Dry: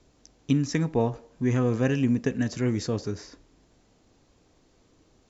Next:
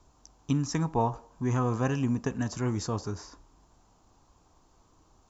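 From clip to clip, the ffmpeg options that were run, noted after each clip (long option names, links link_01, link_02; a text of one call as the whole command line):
ffmpeg -i in.wav -af "equalizer=frequency=125:width_type=o:width=1:gain=-4,equalizer=frequency=250:width_type=o:width=1:gain=-6,equalizer=frequency=500:width_type=o:width=1:gain=-9,equalizer=frequency=1000:width_type=o:width=1:gain=9,equalizer=frequency=2000:width_type=o:width=1:gain=-11,equalizer=frequency=4000:width_type=o:width=1:gain=-6,volume=3dB" out.wav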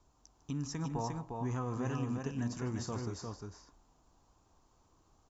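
ffmpeg -i in.wav -af "alimiter=limit=-21dB:level=0:latency=1:release=103,aecho=1:1:151|353:0.178|0.631,volume=-7.5dB" out.wav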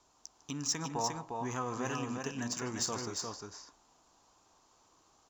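ffmpeg -i in.wav -af "aemphasis=mode=production:type=riaa,adynamicsmooth=sensitivity=7:basefreq=5500,volume=5dB" out.wav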